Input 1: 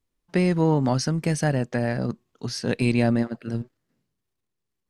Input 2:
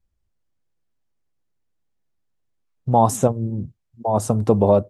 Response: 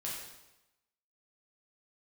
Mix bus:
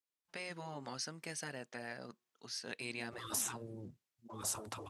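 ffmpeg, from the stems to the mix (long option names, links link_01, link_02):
-filter_complex "[0:a]volume=-10dB[link_01];[1:a]adelay=250,volume=-2dB[link_02];[link_01][link_02]amix=inputs=2:normalize=0,highpass=frequency=1300:poles=1,afftfilt=real='re*lt(hypot(re,im),0.0501)':imag='im*lt(hypot(re,im),0.0501)':win_size=1024:overlap=0.75"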